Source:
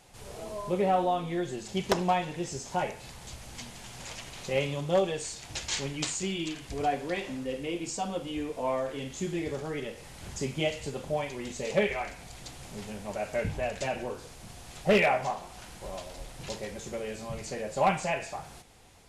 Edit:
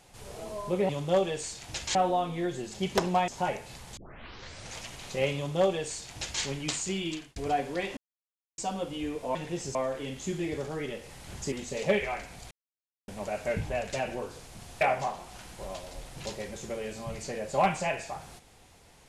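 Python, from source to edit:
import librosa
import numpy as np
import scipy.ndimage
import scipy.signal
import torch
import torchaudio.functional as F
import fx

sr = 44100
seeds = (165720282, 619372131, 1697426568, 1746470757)

y = fx.edit(x, sr, fx.move(start_s=2.22, length_s=0.4, to_s=8.69),
    fx.tape_start(start_s=3.31, length_s=0.8),
    fx.duplicate(start_s=4.7, length_s=1.06, to_s=0.89),
    fx.fade_out_span(start_s=6.45, length_s=0.25),
    fx.silence(start_s=7.31, length_s=0.61),
    fx.cut(start_s=10.46, length_s=0.94),
    fx.silence(start_s=12.39, length_s=0.57),
    fx.cut(start_s=14.69, length_s=0.35), tone=tone)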